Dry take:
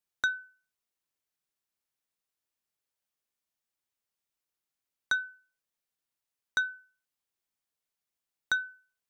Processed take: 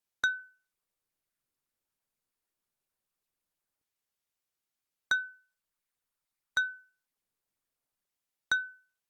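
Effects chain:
0:05.29–0:06.61: parametric band 290 Hz −10.5 dB 0.93 octaves
Opus 48 kbit/s 48,000 Hz

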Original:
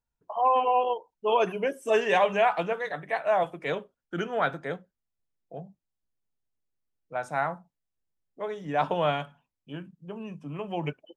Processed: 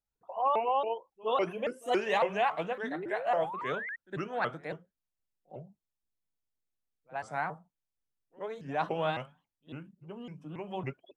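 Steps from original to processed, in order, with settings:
sound drawn into the spectrogram rise, 0:02.83–0:03.96, 240–2,100 Hz −33 dBFS
echo ahead of the sound 64 ms −22 dB
pitch modulation by a square or saw wave saw up 3.6 Hz, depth 250 cents
level −5.5 dB

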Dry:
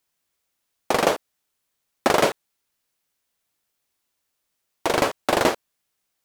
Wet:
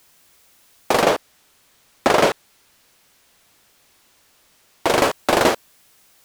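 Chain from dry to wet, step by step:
0:01.02–0:04.87: high-shelf EQ 8,100 Hz −7 dB
power curve on the samples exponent 0.7

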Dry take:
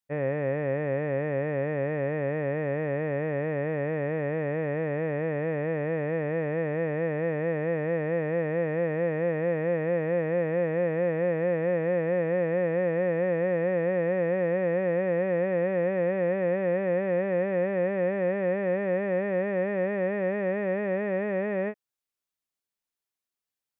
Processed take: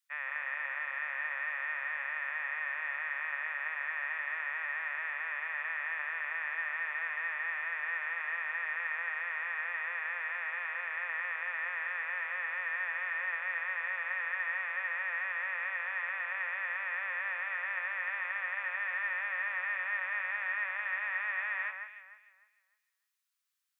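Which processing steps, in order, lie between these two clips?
Butterworth high-pass 1,100 Hz 36 dB per octave
delay that swaps between a low-pass and a high-pass 151 ms, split 2,100 Hz, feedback 51%, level −4.5 dB
level +4.5 dB

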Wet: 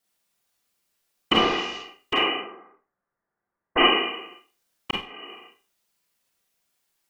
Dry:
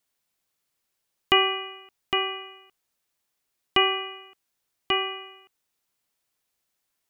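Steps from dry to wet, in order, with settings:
0:01.33–0:01.78: linear delta modulator 32 kbit/s, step −36.5 dBFS
0:02.35–0:03.78: Butterworth low-pass 1,800 Hz 48 dB per octave
random phases in short frames
0:04.91–0:05.31: fade in quadratic
four-comb reverb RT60 0.34 s, combs from 32 ms, DRR −2 dB

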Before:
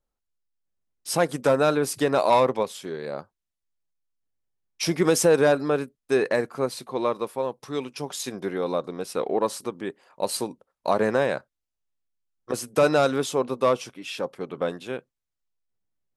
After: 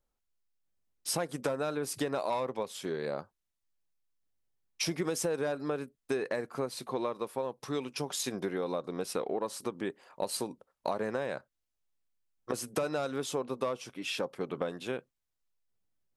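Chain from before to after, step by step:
downward compressor 6 to 1, threshold −30 dBFS, peak gain reduction 14.5 dB

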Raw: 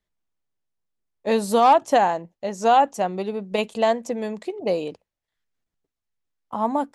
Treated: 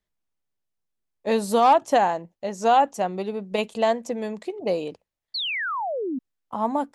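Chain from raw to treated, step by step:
sound drawn into the spectrogram fall, 0:05.34–0:06.19, 240–4,600 Hz −26 dBFS
level −1.5 dB

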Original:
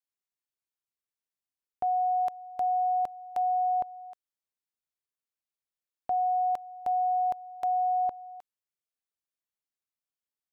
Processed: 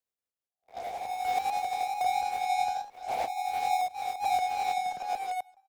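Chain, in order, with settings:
peak hold with a rise ahead of every peak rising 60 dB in 0.94 s
on a send: repeating echo 1,100 ms, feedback 16%, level −7 dB
on the sum: high-pass filter sweep 69 Hz → 1,100 Hz, 0:08.68–0:10.34
in parallel at −9.5 dB: fuzz pedal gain 54 dB, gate −58 dBFS
on the sum: parametric band 540 Hz +10.5 dB 0.72 octaves
notch filter 570 Hz, Q 12
coupled-rooms reverb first 0.22 s, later 1.7 s, from −18 dB, DRR 17.5 dB
sample-and-hold tremolo 3.5 Hz, depth 100%
delay with pitch and tempo change per echo 332 ms, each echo +1 semitone, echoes 2
time stretch by overlap-add 0.54×, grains 174 ms
multiband upward and downward compressor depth 40%
level −8 dB

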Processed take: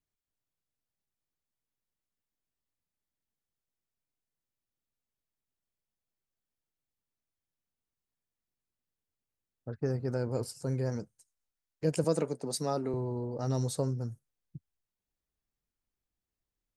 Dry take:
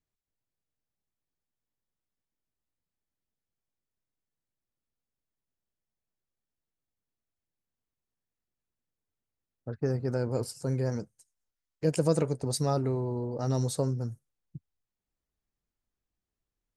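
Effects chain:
0:12.04–0:12.94: high-pass filter 170 Hz 24 dB per octave
level −2.5 dB

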